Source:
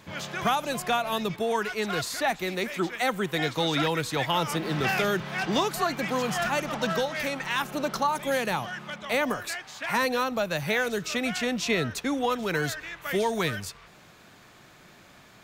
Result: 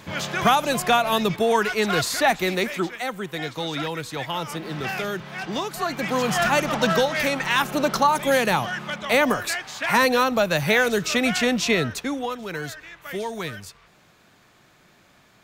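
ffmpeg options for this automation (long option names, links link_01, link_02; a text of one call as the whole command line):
ffmpeg -i in.wav -af "volume=16.5dB,afade=type=out:start_time=2.51:duration=0.52:silence=0.334965,afade=type=in:start_time=5.69:duration=0.79:silence=0.334965,afade=type=out:start_time=11.46:duration=0.88:silence=0.298538" out.wav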